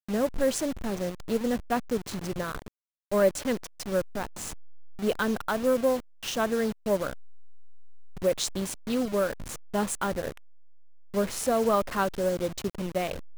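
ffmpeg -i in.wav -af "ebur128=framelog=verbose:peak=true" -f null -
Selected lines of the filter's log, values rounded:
Integrated loudness:
  I:         -29.0 LUFS
  Threshold: -39.3 LUFS
Loudness range:
  LRA:         1.9 LU
  Threshold: -49.8 LUFS
  LRA low:   -30.9 LUFS
  LRA high:  -29.0 LUFS
True peak:
  Peak:      -10.4 dBFS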